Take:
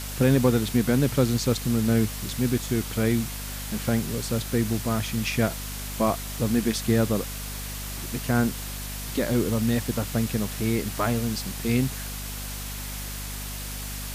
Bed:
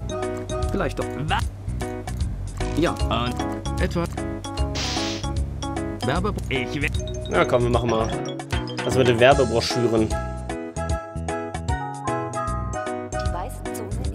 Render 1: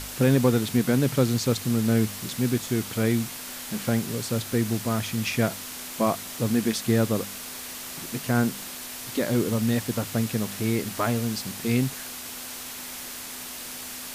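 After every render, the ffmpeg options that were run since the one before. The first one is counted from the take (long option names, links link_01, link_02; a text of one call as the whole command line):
ffmpeg -i in.wav -af "bandreject=frequency=50:width_type=h:width=4,bandreject=frequency=100:width_type=h:width=4,bandreject=frequency=150:width_type=h:width=4,bandreject=frequency=200:width_type=h:width=4" out.wav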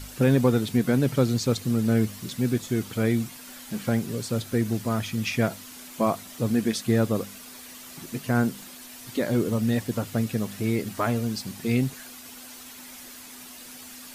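ffmpeg -i in.wav -af "afftdn=noise_reduction=9:noise_floor=-38" out.wav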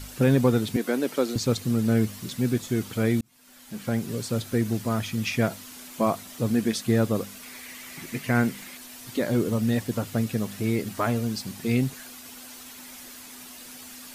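ffmpeg -i in.wav -filter_complex "[0:a]asettb=1/sr,asplit=3[link_01][link_02][link_03];[link_01]atrim=end=0.764[link_04];[link_02]atrim=start=0.76:end=1.36,asetpts=PTS-STARTPTS,afade=type=in:duration=0.004:curve=qsin,afade=type=out:start_time=0.596:duration=0.004:curve=qsin,highpass=frequency=270:width=0.5412,highpass=frequency=270:width=1.3066[link_05];[link_03]atrim=start=1.356[link_06];[link_04][link_05]acrossfade=duration=0.004:curve1=hsin:curve2=qsin[link_07];[link_07][link_06]acrossfade=duration=0.004:curve1=qsin:curve2=hsin,asettb=1/sr,asplit=3[link_08][link_09][link_10];[link_08]atrim=end=7.424[link_11];[link_09]atrim=start=7.42:end=8.78,asetpts=PTS-STARTPTS,afade=type=in:duration=0.004:curve=qsin,afade=type=out:start_time=1.356:duration=0.004:curve=qsin,equalizer=frequency=2100:width_type=o:width=0.54:gain=11[link_12];[link_10]atrim=start=8.776[link_13];[link_11][link_12]acrossfade=duration=0.004:curve1=hsin:curve2=qsin[link_14];[link_14][link_13]acrossfade=duration=0.004:curve1=qsin:curve2=hsin,asplit=2[link_15][link_16];[link_15]atrim=end=3.21,asetpts=PTS-STARTPTS,afade=type=out:start_time=3.206:duration=0.004:curve=hsin[link_17];[link_16]atrim=start=3.21,asetpts=PTS-STARTPTS,afade=type=in:duration=0.93[link_18];[link_17][link_18]concat=n=2:v=0:a=1" out.wav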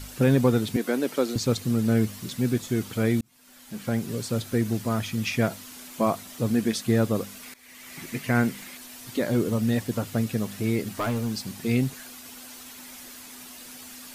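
ffmpeg -i in.wav -filter_complex "[0:a]asettb=1/sr,asplit=3[link_01][link_02][link_03];[link_01]atrim=end=10.894[link_04];[link_02]atrim=start=10.89:end=11.58,asetpts=PTS-STARTPTS,afade=type=in:duration=0.004:curve=qsin,afade=type=out:start_time=0.686:duration=0.004:curve=qsin,asoftclip=type=hard:threshold=-22dB[link_05];[link_03]atrim=start=11.576[link_06];[link_04][link_05]acrossfade=duration=0.004:curve1=hsin:curve2=qsin[link_07];[link_07][link_06]acrossfade=duration=0.004:curve1=qsin:curve2=hsin,asplit=2[link_08][link_09];[link_08]atrim=end=7.54,asetpts=PTS-STARTPTS,afade=type=out:start_time=7.536:duration=0.004:curve=hsin:silence=0.11885[link_10];[link_09]atrim=start=7.54,asetpts=PTS-STARTPTS,afade=type=in:duration=0.45:silence=0.11885[link_11];[link_10][link_11]concat=n=2:v=0:a=1" out.wav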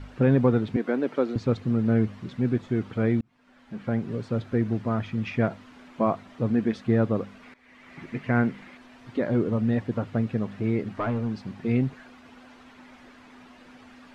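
ffmpeg -i in.wav -af "lowpass=1900" out.wav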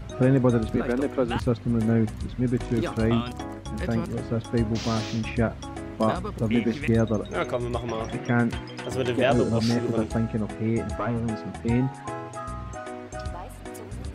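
ffmpeg -i in.wav -i bed.wav -filter_complex "[1:a]volume=-8.5dB[link_01];[0:a][link_01]amix=inputs=2:normalize=0" out.wav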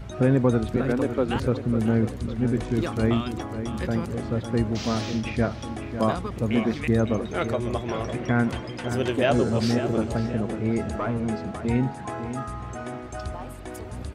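ffmpeg -i in.wav -filter_complex "[0:a]asplit=2[link_01][link_02];[link_02]adelay=549,lowpass=frequency=3200:poles=1,volume=-10dB,asplit=2[link_03][link_04];[link_04]adelay=549,lowpass=frequency=3200:poles=1,volume=0.48,asplit=2[link_05][link_06];[link_06]adelay=549,lowpass=frequency=3200:poles=1,volume=0.48,asplit=2[link_07][link_08];[link_08]adelay=549,lowpass=frequency=3200:poles=1,volume=0.48,asplit=2[link_09][link_10];[link_10]adelay=549,lowpass=frequency=3200:poles=1,volume=0.48[link_11];[link_01][link_03][link_05][link_07][link_09][link_11]amix=inputs=6:normalize=0" out.wav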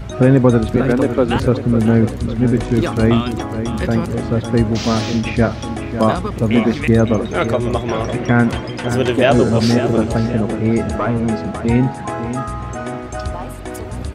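ffmpeg -i in.wav -af "volume=9dB,alimiter=limit=-1dB:level=0:latency=1" out.wav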